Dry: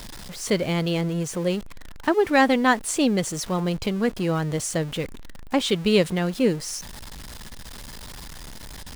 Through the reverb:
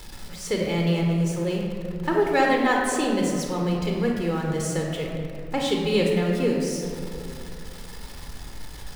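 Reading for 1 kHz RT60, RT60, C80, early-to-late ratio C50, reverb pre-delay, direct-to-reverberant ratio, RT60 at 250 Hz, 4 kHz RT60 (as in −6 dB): 2.2 s, 2.5 s, 3.0 dB, 1.0 dB, 24 ms, −0.5 dB, 2.8 s, 1.2 s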